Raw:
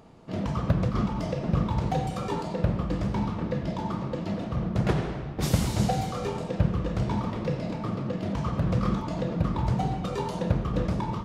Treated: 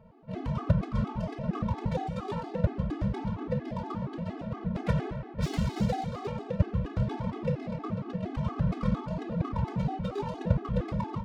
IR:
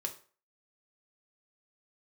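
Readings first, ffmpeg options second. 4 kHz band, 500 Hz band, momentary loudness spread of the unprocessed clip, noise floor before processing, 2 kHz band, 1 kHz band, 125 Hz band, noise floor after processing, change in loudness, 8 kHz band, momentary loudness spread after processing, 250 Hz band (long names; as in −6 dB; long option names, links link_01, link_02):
−7.5 dB, −3.5 dB, 5 LU, −35 dBFS, −4.5 dB, −4.5 dB, −3.0 dB, −43 dBFS, −3.5 dB, −13.0 dB, 6 LU, −3.5 dB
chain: -af "adynamicsmooth=sensitivity=7.5:basefreq=2100,afftfilt=real='re*gt(sin(2*PI*4.3*pts/sr)*(1-2*mod(floor(b*sr/1024/220),2)),0)':imag='im*gt(sin(2*PI*4.3*pts/sr)*(1-2*mod(floor(b*sr/1024/220),2)),0)':win_size=1024:overlap=0.75"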